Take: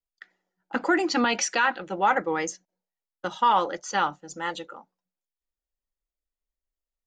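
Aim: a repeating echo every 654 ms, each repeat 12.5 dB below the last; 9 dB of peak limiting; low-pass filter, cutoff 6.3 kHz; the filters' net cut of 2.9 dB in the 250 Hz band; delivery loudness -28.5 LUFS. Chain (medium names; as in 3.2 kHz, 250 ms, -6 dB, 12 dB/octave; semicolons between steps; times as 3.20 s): low-pass 6.3 kHz; peaking EQ 250 Hz -4 dB; peak limiter -19.5 dBFS; feedback delay 654 ms, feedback 24%, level -12.5 dB; trim +3 dB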